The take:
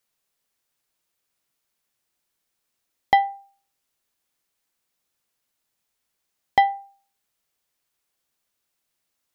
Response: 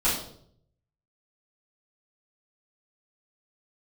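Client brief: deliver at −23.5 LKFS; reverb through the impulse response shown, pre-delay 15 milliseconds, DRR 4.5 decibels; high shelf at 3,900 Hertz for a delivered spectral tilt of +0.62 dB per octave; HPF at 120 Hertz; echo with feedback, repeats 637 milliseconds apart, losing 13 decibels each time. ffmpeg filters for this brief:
-filter_complex "[0:a]highpass=120,highshelf=frequency=3900:gain=-5,aecho=1:1:637|1274|1911:0.224|0.0493|0.0108,asplit=2[link_01][link_02];[1:a]atrim=start_sample=2205,adelay=15[link_03];[link_02][link_03]afir=irnorm=-1:irlink=0,volume=-17dB[link_04];[link_01][link_04]amix=inputs=2:normalize=0,volume=0.5dB"

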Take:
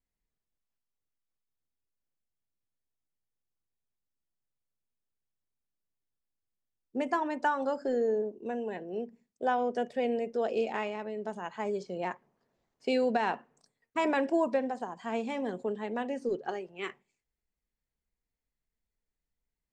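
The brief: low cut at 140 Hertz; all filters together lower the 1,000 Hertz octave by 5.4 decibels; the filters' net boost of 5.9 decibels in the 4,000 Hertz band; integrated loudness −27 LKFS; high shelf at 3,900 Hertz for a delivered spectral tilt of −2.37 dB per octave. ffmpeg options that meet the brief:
ffmpeg -i in.wav -af "highpass=140,equalizer=frequency=1000:width_type=o:gain=-8,highshelf=frequency=3900:gain=7.5,equalizer=frequency=4000:width_type=o:gain=4.5,volume=7dB" out.wav

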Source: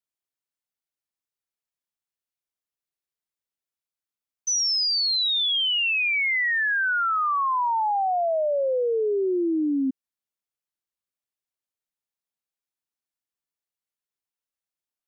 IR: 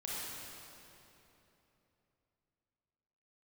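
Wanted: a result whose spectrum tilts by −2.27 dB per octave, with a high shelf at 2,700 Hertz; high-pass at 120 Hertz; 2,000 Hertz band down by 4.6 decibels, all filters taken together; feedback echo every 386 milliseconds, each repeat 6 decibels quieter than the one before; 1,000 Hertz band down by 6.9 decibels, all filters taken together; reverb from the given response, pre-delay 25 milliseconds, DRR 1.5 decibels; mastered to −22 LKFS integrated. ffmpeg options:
-filter_complex "[0:a]highpass=120,equalizer=frequency=1000:width_type=o:gain=-8.5,equalizer=frequency=2000:width_type=o:gain=-7.5,highshelf=frequency=2700:gain=8.5,aecho=1:1:386|772|1158|1544|1930|2316:0.501|0.251|0.125|0.0626|0.0313|0.0157,asplit=2[link_01][link_02];[1:a]atrim=start_sample=2205,adelay=25[link_03];[link_02][link_03]afir=irnorm=-1:irlink=0,volume=-3.5dB[link_04];[link_01][link_04]amix=inputs=2:normalize=0,volume=-4dB"

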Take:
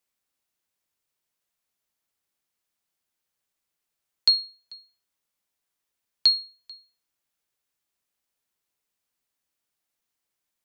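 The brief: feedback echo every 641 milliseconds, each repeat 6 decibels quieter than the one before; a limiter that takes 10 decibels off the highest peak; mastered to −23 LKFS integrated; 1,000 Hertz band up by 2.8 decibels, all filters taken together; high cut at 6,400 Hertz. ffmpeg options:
ffmpeg -i in.wav -af "lowpass=6400,equalizer=frequency=1000:width_type=o:gain=3.5,alimiter=limit=-19.5dB:level=0:latency=1,aecho=1:1:641|1282|1923|2564|3205|3846:0.501|0.251|0.125|0.0626|0.0313|0.0157,volume=8dB" out.wav

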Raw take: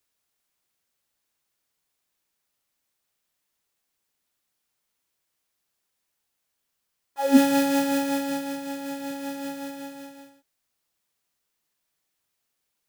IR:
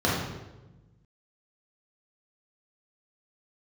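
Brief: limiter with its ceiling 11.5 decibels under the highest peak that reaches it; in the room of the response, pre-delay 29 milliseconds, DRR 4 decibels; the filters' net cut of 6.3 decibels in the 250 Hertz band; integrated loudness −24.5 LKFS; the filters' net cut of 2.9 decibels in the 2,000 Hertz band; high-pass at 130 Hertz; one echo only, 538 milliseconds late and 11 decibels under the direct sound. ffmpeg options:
-filter_complex "[0:a]highpass=130,equalizer=frequency=250:width_type=o:gain=-6.5,equalizer=frequency=2000:width_type=o:gain=-3.5,alimiter=limit=-20dB:level=0:latency=1,aecho=1:1:538:0.282,asplit=2[link_01][link_02];[1:a]atrim=start_sample=2205,adelay=29[link_03];[link_02][link_03]afir=irnorm=-1:irlink=0,volume=-19.5dB[link_04];[link_01][link_04]amix=inputs=2:normalize=0,volume=2dB"

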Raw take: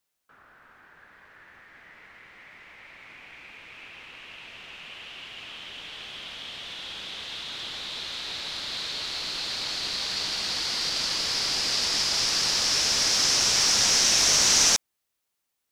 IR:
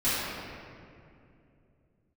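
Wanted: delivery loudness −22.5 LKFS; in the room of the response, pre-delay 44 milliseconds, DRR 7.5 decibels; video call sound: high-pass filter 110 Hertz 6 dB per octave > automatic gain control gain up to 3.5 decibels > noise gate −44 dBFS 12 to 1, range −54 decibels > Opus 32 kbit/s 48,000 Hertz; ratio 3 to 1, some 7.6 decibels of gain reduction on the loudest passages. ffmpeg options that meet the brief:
-filter_complex "[0:a]acompressor=threshold=-27dB:ratio=3,asplit=2[link_01][link_02];[1:a]atrim=start_sample=2205,adelay=44[link_03];[link_02][link_03]afir=irnorm=-1:irlink=0,volume=-20.5dB[link_04];[link_01][link_04]amix=inputs=2:normalize=0,highpass=frequency=110:poles=1,dynaudnorm=maxgain=3.5dB,agate=range=-54dB:threshold=-44dB:ratio=12,volume=5.5dB" -ar 48000 -c:a libopus -b:a 32k

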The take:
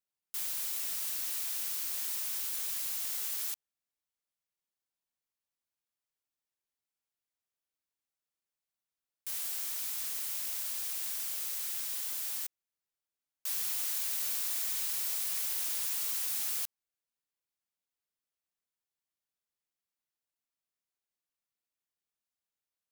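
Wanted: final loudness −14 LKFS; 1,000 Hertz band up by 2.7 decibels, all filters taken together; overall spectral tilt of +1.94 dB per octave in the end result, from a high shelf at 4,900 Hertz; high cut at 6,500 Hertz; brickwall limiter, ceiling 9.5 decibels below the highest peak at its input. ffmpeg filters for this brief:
ffmpeg -i in.wav -af "lowpass=6500,equalizer=frequency=1000:width_type=o:gain=3,highshelf=frequency=4900:gain=8.5,volume=28dB,alimiter=limit=-7dB:level=0:latency=1" out.wav

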